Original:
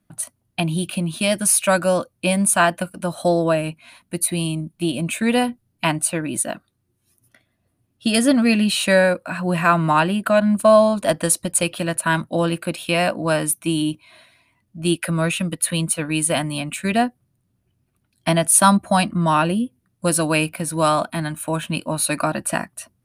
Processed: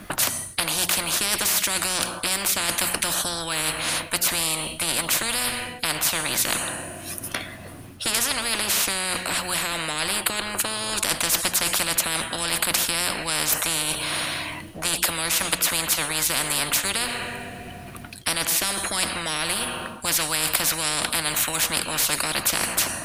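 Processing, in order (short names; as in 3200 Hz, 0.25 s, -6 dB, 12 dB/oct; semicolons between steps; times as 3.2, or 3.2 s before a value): bell 1500 Hz +6 dB 3 oct; notches 60/120/180/240 Hz; in parallel at +3 dB: limiter -11.5 dBFS, peak gain reduction 14 dB; on the sum: two-slope reverb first 0.8 s, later 2.7 s, from -22 dB, DRR 19 dB; reverse; compressor 6:1, threshold -19 dBFS, peak gain reduction 16 dB; reverse; spectral compressor 10:1; gain +4 dB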